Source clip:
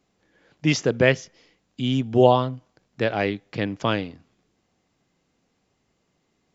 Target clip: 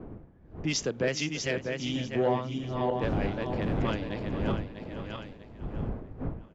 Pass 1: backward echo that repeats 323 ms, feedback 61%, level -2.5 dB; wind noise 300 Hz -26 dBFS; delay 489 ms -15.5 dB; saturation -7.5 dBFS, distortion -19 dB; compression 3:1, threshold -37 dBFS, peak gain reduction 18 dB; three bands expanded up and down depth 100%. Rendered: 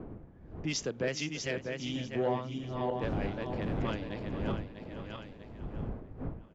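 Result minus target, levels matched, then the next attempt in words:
compression: peak gain reduction +4.5 dB
backward echo that repeats 323 ms, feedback 61%, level -2.5 dB; wind noise 300 Hz -26 dBFS; delay 489 ms -15.5 dB; saturation -7.5 dBFS, distortion -19 dB; compression 3:1, threshold -30.5 dBFS, peak gain reduction 13.5 dB; three bands expanded up and down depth 100%

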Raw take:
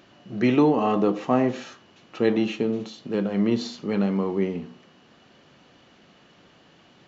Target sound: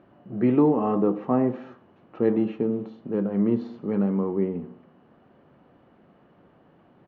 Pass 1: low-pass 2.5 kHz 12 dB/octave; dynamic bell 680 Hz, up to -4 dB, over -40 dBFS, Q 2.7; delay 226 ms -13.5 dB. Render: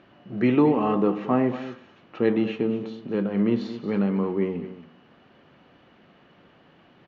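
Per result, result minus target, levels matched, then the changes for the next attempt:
2 kHz band +9.0 dB; echo-to-direct +11.5 dB
change: low-pass 1.1 kHz 12 dB/octave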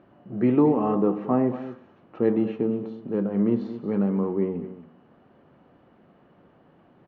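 echo-to-direct +11.5 dB
change: delay 226 ms -25 dB

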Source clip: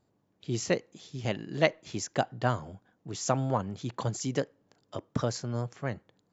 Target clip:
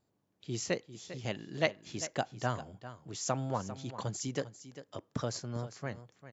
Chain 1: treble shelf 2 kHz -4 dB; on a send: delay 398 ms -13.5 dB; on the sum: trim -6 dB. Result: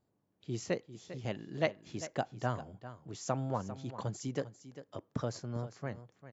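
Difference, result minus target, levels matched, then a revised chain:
4 kHz band -4.5 dB
treble shelf 2 kHz +4 dB; on a send: delay 398 ms -13.5 dB; on the sum: trim -6 dB

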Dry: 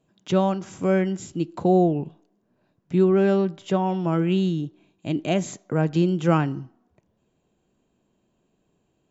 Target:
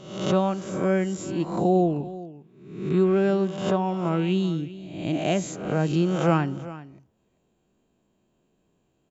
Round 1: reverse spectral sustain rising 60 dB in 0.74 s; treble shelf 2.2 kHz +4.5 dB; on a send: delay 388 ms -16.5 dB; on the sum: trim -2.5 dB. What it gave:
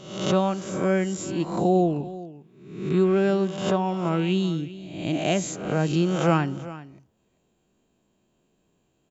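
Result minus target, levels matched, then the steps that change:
4 kHz band +3.0 dB
remove: treble shelf 2.2 kHz +4.5 dB

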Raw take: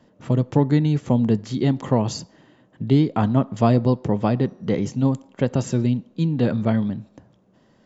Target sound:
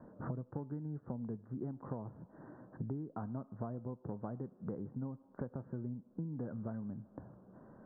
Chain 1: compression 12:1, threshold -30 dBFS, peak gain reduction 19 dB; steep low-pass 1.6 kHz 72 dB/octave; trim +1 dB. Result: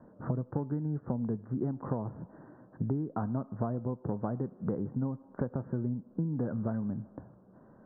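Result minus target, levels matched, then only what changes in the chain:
compression: peak gain reduction -8.5 dB
change: compression 12:1, threshold -39.5 dBFS, peak gain reduction 28 dB

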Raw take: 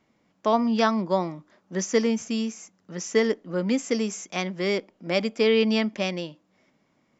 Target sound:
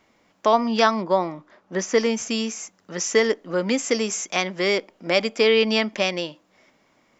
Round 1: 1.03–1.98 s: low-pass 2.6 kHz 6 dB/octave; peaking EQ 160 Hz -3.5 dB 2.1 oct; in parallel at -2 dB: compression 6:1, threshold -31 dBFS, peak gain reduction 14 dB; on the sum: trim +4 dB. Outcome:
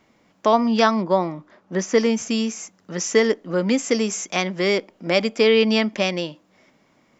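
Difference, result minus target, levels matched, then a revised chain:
125 Hz band +3.5 dB
1.03–1.98 s: low-pass 2.6 kHz 6 dB/octave; peaking EQ 160 Hz -9.5 dB 2.1 oct; in parallel at -2 dB: compression 6:1, threshold -31 dBFS, peak gain reduction 13 dB; on the sum: trim +4 dB

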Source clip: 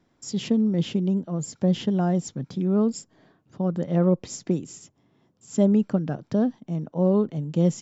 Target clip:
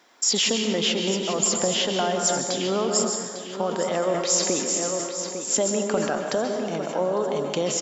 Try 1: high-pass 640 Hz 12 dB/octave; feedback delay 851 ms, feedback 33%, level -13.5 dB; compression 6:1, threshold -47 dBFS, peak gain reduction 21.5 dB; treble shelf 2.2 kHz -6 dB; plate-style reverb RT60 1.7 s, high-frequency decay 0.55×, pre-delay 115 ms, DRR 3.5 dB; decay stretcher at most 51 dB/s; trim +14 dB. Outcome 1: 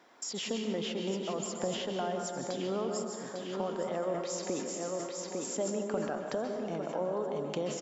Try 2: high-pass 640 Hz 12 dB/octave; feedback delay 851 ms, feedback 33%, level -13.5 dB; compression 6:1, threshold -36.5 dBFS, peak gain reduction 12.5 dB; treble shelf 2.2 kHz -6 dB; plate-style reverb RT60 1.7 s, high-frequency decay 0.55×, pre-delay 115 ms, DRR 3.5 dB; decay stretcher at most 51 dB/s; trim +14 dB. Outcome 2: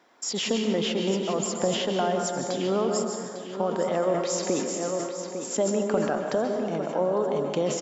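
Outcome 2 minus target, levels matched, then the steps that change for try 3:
4 kHz band -4.5 dB
change: treble shelf 2.2 kHz +4.5 dB

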